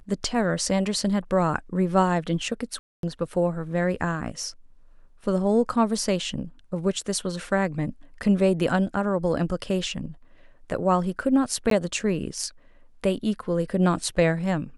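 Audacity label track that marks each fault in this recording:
2.790000	3.030000	drop-out 242 ms
11.700000	11.710000	drop-out 13 ms

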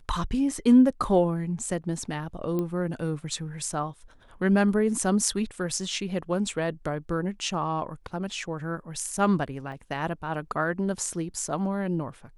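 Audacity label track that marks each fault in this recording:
2.590000	2.590000	click −18 dBFS
9.720000	9.720000	drop-out 2.2 ms

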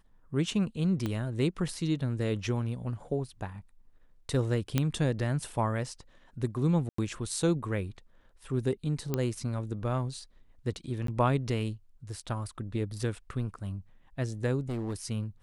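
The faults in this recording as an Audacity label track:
1.060000	1.060000	click −19 dBFS
4.780000	4.780000	click −12 dBFS
6.890000	6.980000	drop-out 94 ms
9.140000	9.140000	click −15 dBFS
11.070000	11.080000	drop-out 13 ms
14.690000	15.110000	clipping −29.5 dBFS

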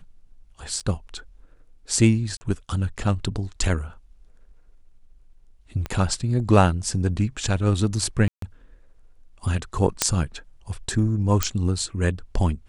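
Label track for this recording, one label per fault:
0.800000	0.810000	drop-out 6.1 ms
2.370000	2.410000	drop-out 40 ms
5.860000	5.860000	click −16 dBFS
8.280000	8.420000	drop-out 143 ms
10.020000	10.020000	click −1 dBFS
11.430000	11.430000	click −4 dBFS

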